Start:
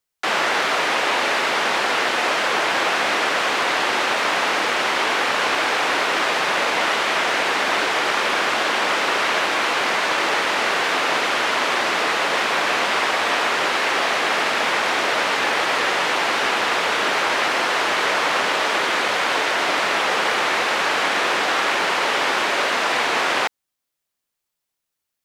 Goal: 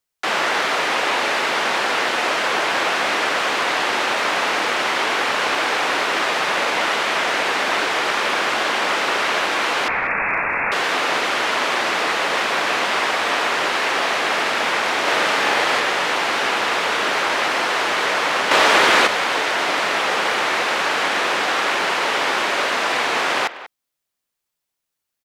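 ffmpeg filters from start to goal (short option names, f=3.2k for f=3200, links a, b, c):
-filter_complex "[0:a]asettb=1/sr,asplit=3[a][b][c];[a]atrim=end=9.884[d];[b]atrim=start=9.88:end=10.72,asetpts=PTS-STARTPTS,afade=t=in:d=0.004:c=qsin,afade=t=out:st=0.836:d=0.004:c=qsin,lowpass=f=2.5k:t=q:w=0.5098,lowpass=f=2.5k:t=q:w=0.6013,lowpass=f=2.5k:t=q:w=0.9,lowpass=f=2.5k:t=q:w=2.563,afreqshift=-2900[e];[c]atrim=start=10.716[f];[d][e]acrossfade=d=0.004:c1=hsin:c2=qsin[g];[g][f]acrossfade=d=0.004:c1=qsin:c2=hsin,asplit=3[h][i][j];[h]afade=t=out:st=15.05:d=0.02[k];[i]asplit=2[l][m];[m]adelay=44,volume=-2.5dB[n];[l][n]amix=inputs=2:normalize=0,afade=t=in:st=15.05:d=0.02,afade=t=out:st=15.79:d=0.02[o];[j]afade=t=in:st=15.79:d=0.02[p];[k][o][p]amix=inputs=3:normalize=0,asettb=1/sr,asplit=3[q][r][s];[q]atrim=end=18.514[t];[r]atrim=start=18.51:end=19.07,asetpts=PTS-STARTPTS,afade=t=in:d=0.004:c=qsin,afade=t=out:st=0.556:d=0.004:c=qsin,acontrast=88[u];[s]atrim=start=19.066[v];[t][u]acrossfade=d=0.004:c1=hsin:c2=qsin[w];[w][v]acrossfade=d=0.004:c1=qsin:c2=hsin,asplit=2[x][y];[y]adelay=190,highpass=300,lowpass=3.4k,asoftclip=type=hard:threshold=-14dB,volume=-14dB[z];[x][z]amix=inputs=2:normalize=0"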